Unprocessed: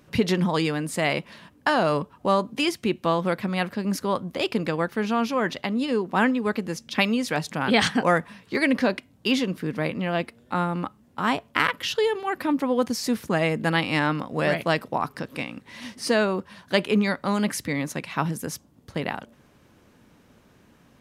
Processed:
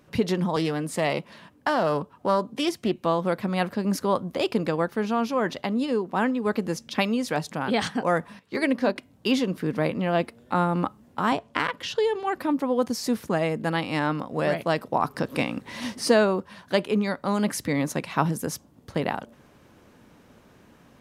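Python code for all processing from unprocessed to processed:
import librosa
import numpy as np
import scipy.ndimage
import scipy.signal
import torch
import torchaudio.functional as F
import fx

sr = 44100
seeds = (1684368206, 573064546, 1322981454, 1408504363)

y = fx.chain(x, sr, fx.highpass(hz=67.0, slope=24),
    fx.doppler_dist(depth_ms=0.18), at=(0.56, 2.98))
y = fx.chain(y, sr, fx.hum_notches(base_hz=60, count=7),
    fx.upward_expand(threshold_db=-39.0, expansion=1.5), at=(8.39, 8.96))
y = fx.chain(y, sr, fx.lowpass(hz=8500.0, slope=12),
    fx.notch(hz=1300.0, q=19.0),
    fx.band_squash(depth_pct=40), at=(11.32, 12.39))
y = fx.peak_eq(y, sr, hz=680.0, db=3.0, octaves=2.5)
y = fx.rider(y, sr, range_db=10, speed_s=0.5)
y = fx.dynamic_eq(y, sr, hz=2200.0, q=0.95, threshold_db=-38.0, ratio=4.0, max_db=-4)
y = F.gain(torch.from_numpy(y), -2.0).numpy()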